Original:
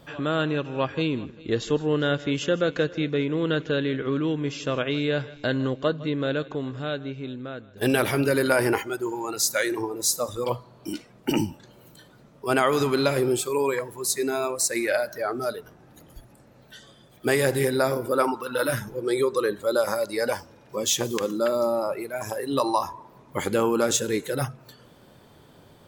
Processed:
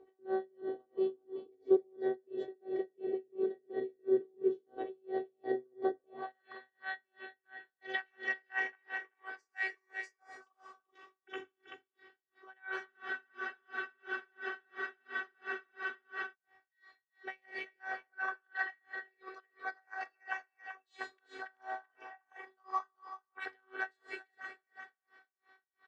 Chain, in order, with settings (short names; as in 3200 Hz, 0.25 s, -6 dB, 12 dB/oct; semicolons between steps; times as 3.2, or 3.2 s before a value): air absorption 180 m; formant shift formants +3 st; dynamic EQ 1200 Hz, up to -3 dB, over -38 dBFS, Q 0.84; on a send: echo 0.383 s -9.5 dB; on the sum: robotiser 379 Hz; Schroeder reverb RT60 2.1 s, combs from 29 ms, DRR 7 dB; band-pass sweep 400 Hz -> 1700 Hz, 5.94–6.45; spectral freeze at 12.9, 3.43 s; dB-linear tremolo 2.9 Hz, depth 39 dB; gain +4 dB